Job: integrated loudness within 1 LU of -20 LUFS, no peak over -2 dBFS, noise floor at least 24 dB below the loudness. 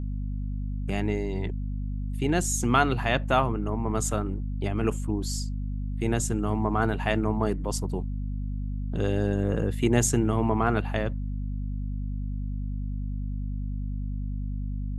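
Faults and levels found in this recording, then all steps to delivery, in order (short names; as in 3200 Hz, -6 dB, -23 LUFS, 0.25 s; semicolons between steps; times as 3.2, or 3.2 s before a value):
hum 50 Hz; harmonics up to 250 Hz; hum level -28 dBFS; loudness -28.5 LUFS; peak -7.0 dBFS; loudness target -20.0 LUFS
-> notches 50/100/150/200/250 Hz; gain +8.5 dB; limiter -2 dBFS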